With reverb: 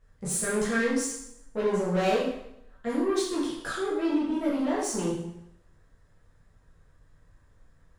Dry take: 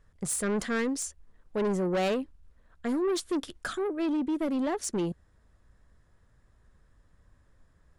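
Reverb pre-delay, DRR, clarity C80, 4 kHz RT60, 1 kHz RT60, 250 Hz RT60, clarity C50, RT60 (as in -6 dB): 5 ms, -8.0 dB, 5.0 dB, 0.70 s, 0.80 s, 0.80 s, 1.5 dB, 0.80 s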